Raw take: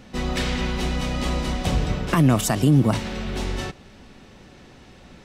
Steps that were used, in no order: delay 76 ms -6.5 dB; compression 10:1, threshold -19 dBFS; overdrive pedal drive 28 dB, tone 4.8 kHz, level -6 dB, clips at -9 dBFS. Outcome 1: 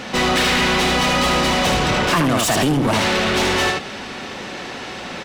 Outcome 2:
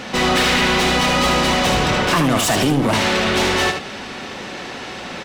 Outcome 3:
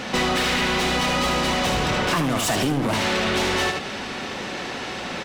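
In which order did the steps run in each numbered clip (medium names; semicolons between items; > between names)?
delay > compression > overdrive pedal; compression > overdrive pedal > delay; overdrive pedal > delay > compression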